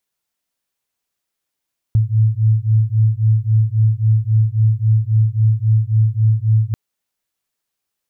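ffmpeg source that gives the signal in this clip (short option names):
-f lavfi -i "aevalsrc='0.188*(sin(2*PI*108*t)+sin(2*PI*111.7*t))':d=4.79:s=44100"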